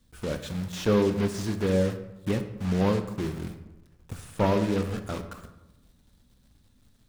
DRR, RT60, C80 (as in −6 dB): 7.5 dB, 1.0 s, 12.5 dB